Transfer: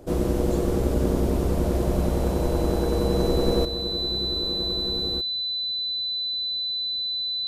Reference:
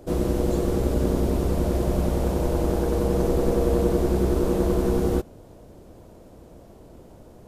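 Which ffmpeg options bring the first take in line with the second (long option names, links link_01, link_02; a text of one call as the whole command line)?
ffmpeg -i in.wav -af "bandreject=frequency=4000:width=30,asetnsamples=nb_out_samples=441:pad=0,asendcmd='3.65 volume volume 10.5dB',volume=0dB" out.wav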